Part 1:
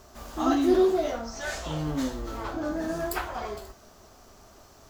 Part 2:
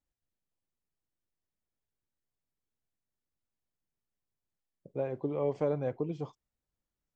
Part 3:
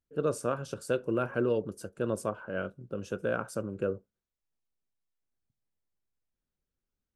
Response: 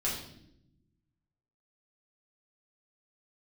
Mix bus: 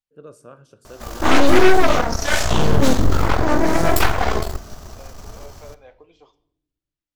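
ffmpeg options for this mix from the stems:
-filter_complex "[0:a]asubboost=boost=3:cutoff=170,dynaudnorm=framelen=170:gausssize=5:maxgain=3dB,aeval=exprs='0.355*(cos(1*acos(clip(val(0)/0.355,-1,1)))-cos(1*PI/2))+0.0794*(cos(3*acos(clip(val(0)/0.355,-1,1)))-cos(3*PI/2))+0.0501*(cos(5*acos(clip(val(0)/0.355,-1,1)))-cos(5*PI/2))+0.1*(cos(8*acos(clip(val(0)/0.355,-1,1)))-cos(8*PI/2))':channel_layout=same,adelay=850,volume=1.5dB,asplit=2[link_01][link_02];[link_02]volume=-21dB[link_03];[1:a]highpass=620,equalizer=frequency=3300:width_type=o:width=2:gain=9,flanger=delay=6.2:depth=8.3:regen=71:speed=1.3:shape=sinusoidal,volume=-10dB,asplit=2[link_04][link_05];[link_05]volume=-17dB[link_06];[2:a]volume=-18.5dB,asplit=2[link_07][link_08];[link_08]volume=-19dB[link_09];[3:a]atrim=start_sample=2205[link_10];[link_03][link_06][link_09]amix=inputs=3:normalize=0[link_11];[link_11][link_10]afir=irnorm=-1:irlink=0[link_12];[link_01][link_04][link_07][link_12]amix=inputs=4:normalize=0,acontrast=39"

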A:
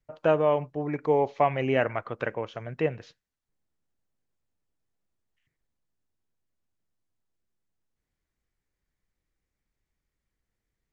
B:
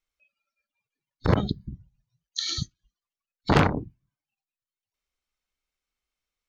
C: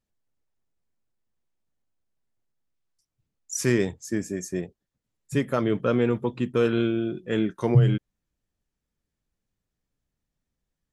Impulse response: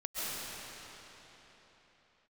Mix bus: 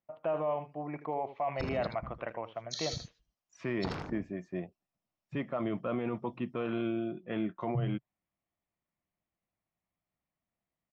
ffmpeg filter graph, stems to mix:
-filter_complex "[0:a]volume=-6dB,asplit=2[link_01][link_02];[link_02]volume=-17dB[link_03];[1:a]equalizer=frequency=5300:width=5:gain=9,acompressor=threshold=-27dB:ratio=8,adelay=350,volume=-8dB,asplit=2[link_04][link_05];[link_05]volume=-6.5dB[link_06];[2:a]volume=-5dB[link_07];[link_01][link_07]amix=inputs=2:normalize=0,highpass=120,equalizer=frequency=130:width_type=q:width=4:gain=-5,equalizer=frequency=260:width_type=q:width=4:gain=-4,equalizer=frequency=440:width_type=q:width=4:gain=-9,equalizer=frequency=680:width_type=q:width=4:gain=8,equalizer=frequency=1100:width_type=q:width=4:gain=4,equalizer=frequency=1600:width_type=q:width=4:gain=-7,lowpass=frequency=2900:width=0.5412,lowpass=frequency=2900:width=1.3066,alimiter=level_in=0.5dB:limit=-24dB:level=0:latency=1:release=14,volume=-0.5dB,volume=0dB[link_08];[link_03][link_06]amix=inputs=2:normalize=0,aecho=0:1:79:1[link_09];[link_04][link_08][link_09]amix=inputs=3:normalize=0"

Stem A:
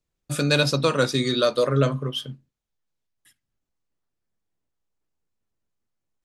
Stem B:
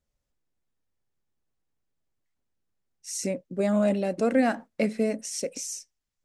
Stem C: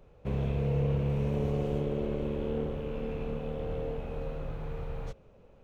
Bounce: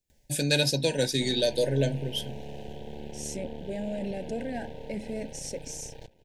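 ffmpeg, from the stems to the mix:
ffmpeg -i stem1.wav -i stem2.wav -i stem3.wav -filter_complex "[0:a]highshelf=frequency=5900:gain=10,volume=-5dB[link_01];[1:a]acompressor=mode=upward:threshold=-41dB:ratio=2.5,alimiter=limit=-21.5dB:level=0:latency=1:release=14,adelay=100,volume=-5dB[link_02];[2:a]highshelf=frequency=2500:width_type=q:width=1.5:gain=11,acrossover=split=110|250|2700[link_03][link_04][link_05][link_06];[link_03]acompressor=threshold=-44dB:ratio=4[link_07];[link_04]acompressor=threshold=-40dB:ratio=4[link_08];[link_05]acompressor=threshold=-37dB:ratio=4[link_09];[link_06]acompressor=threshold=-59dB:ratio=4[link_10];[link_07][link_08][link_09][link_10]amix=inputs=4:normalize=0,aeval=exprs='max(val(0),0)':channel_layout=same,adelay=950,volume=0dB[link_11];[link_01][link_02][link_11]amix=inputs=3:normalize=0,asuperstop=centerf=1200:order=20:qfactor=2.2" out.wav

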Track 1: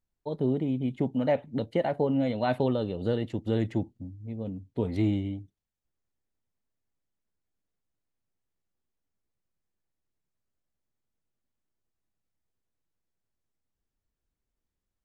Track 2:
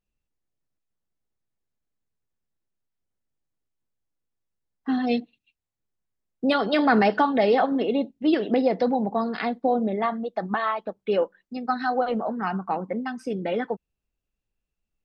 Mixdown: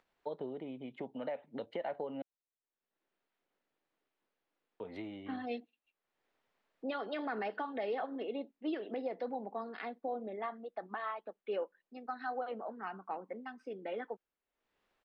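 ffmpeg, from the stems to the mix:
ffmpeg -i stem1.wav -i stem2.wav -filter_complex "[0:a]equalizer=frequency=300:width=1.4:gain=-5.5,acompressor=threshold=-36dB:ratio=5,volume=2dB,asplit=3[link_01][link_02][link_03];[link_01]atrim=end=2.22,asetpts=PTS-STARTPTS,afade=type=out:start_time=2.216:duration=0.004:curve=hsin[link_04];[link_02]atrim=start=2.22:end=4.8,asetpts=PTS-STARTPTS,volume=0[link_05];[link_03]atrim=start=4.8,asetpts=PTS-STARTPTS,afade=type=in:duration=0.004:curve=hsin[link_06];[link_04][link_05][link_06]concat=n=3:v=0:a=1[link_07];[1:a]adynamicequalizer=threshold=0.0178:dfrequency=820:dqfactor=0.78:tfrequency=820:tqfactor=0.78:attack=5:release=100:ratio=0.375:range=1.5:mode=cutabove:tftype=bell,adelay=400,volume=-11.5dB[link_08];[link_07][link_08]amix=inputs=2:normalize=0,acompressor=mode=upward:threshold=-53dB:ratio=2.5,acrossover=split=270 3700:gain=0.0631 1 0.0891[link_09][link_10][link_11];[link_09][link_10][link_11]amix=inputs=3:normalize=0,alimiter=level_in=4dB:limit=-24dB:level=0:latency=1:release=157,volume=-4dB" out.wav

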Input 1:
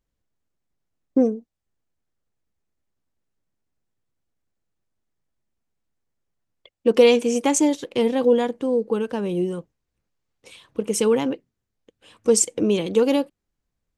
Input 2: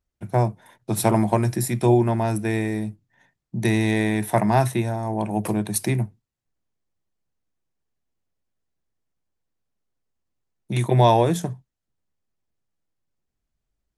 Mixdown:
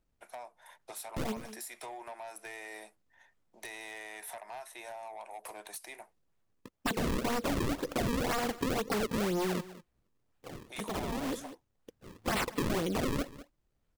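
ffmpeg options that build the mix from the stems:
ffmpeg -i stem1.wav -i stem2.wav -filter_complex "[0:a]bandreject=frequency=2100:width=10,acrusher=samples=35:mix=1:aa=0.000001:lfo=1:lforange=56:lforate=2,aeval=exprs='0.0841*(abs(mod(val(0)/0.0841+3,4)-2)-1)':channel_layout=same,volume=2dB,asplit=2[link_01][link_02];[link_02]volume=-22dB[link_03];[1:a]highpass=frequency=590:width=0.5412,highpass=frequency=590:width=1.3066,acompressor=threshold=-34dB:ratio=12,asoftclip=type=tanh:threshold=-35dB,volume=-2.5dB,asplit=2[link_04][link_05];[link_05]apad=whole_len=616346[link_06];[link_01][link_06]sidechaincompress=threshold=-55dB:ratio=4:attack=9.7:release=106[link_07];[link_03]aecho=0:1:199:1[link_08];[link_07][link_04][link_08]amix=inputs=3:normalize=0,acompressor=threshold=-30dB:ratio=4" out.wav

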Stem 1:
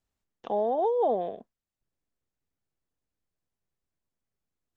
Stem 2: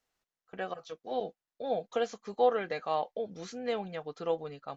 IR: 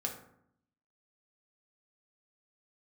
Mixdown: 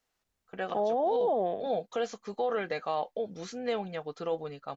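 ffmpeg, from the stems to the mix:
-filter_complex "[0:a]adelay=250,volume=1dB[link_01];[1:a]volume=2dB[link_02];[link_01][link_02]amix=inputs=2:normalize=0,alimiter=limit=-21dB:level=0:latency=1:release=12"

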